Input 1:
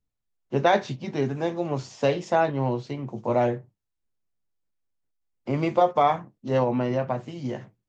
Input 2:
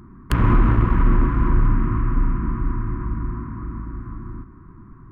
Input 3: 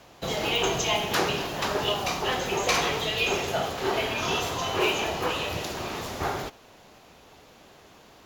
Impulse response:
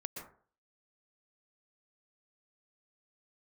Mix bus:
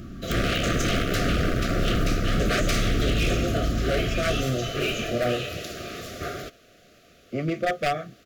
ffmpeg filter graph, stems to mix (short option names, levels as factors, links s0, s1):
-filter_complex "[0:a]acrossover=split=400[s0][s1];[s0]aeval=exprs='val(0)*(1-0.7/2+0.7/2*cos(2*PI*6.4*n/s))':c=same[s2];[s1]aeval=exprs='val(0)*(1-0.7/2-0.7/2*cos(2*PI*6.4*n/s))':c=same[s3];[s2][s3]amix=inputs=2:normalize=0,adelay=1850,volume=0.631[s4];[1:a]asoftclip=type=tanh:threshold=0.178,volume=0.891[s5];[2:a]volume=0.398[s6];[s4][s5][s6]amix=inputs=3:normalize=0,acontrast=54,aeval=exprs='0.141*(abs(mod(val(0)/0.141+3,4)-2)-1)':c=same,asuperstop=centerf=920:order=20:qfactor=2.2"